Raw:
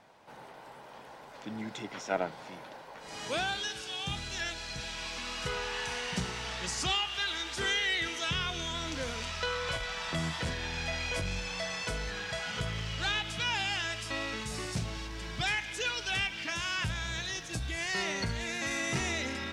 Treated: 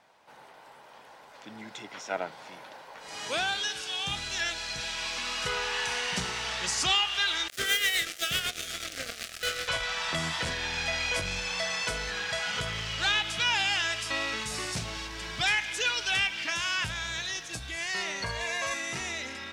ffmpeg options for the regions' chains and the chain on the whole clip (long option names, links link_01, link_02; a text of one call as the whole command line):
ffmpeg -i in.wav -filter_complex "[0:a]asettb=1/sr,asplit=3[link_01][link_02][link_03];[link_01]atrim=end=7.484[link_04];[link_02]atrim=start=7.48:end=9.68,asetpts=PTS-STARTPTS,afade=type=in:duration=0.004:curve=qsin,afade=type=out:start_time=2.196:duration=0.004:curve=qsin,acrusher=bits=4:mix=0:aa=0.5,tremolo=f=8:d=0.56,asuperstop=centerf=950:order=4:qfactor=2.2[link_05];[link_03]atrim=start=9.676[link_06];[link_04][link_05]acrossfade=duration=0.004:curve1=hsin:curve2=qsin[link_07];[link_07][link_06]acrossfade=duration=0.004:curve1=qsin:curve2=hsin,asettb=1/sr,asplit=3[link_08][link_09][link_10];[link_08]atrim=end=18.244[link_11];[link_09]atrim=start=18.24:end=18.74,asetpts=PTS-STARTPTS,afade=type=in:duration=0.004:curve=qsin,afade=type=out:start_time=0.496:duration=0.004:curve=qsin,equalizer=frequency=900:width=1.1:gain=9.5,aecho=1:1:1.8:0.81,atrim=end_sample=22050[link_12];[link_10]atrim=start=18.736[link_13];[link_11][link_12]acrossfade=duration=0.004:curve1=hsin:curve2=qsin[link_14];[link_14][link_13]acrossfade=duration=0.004:curve1=qsin:curve2=hsin,dynaudnorm=framelen=460:gausssize=13:maxgain=6dB,lowshelf=frequency=460:gain=-9.5" out.wav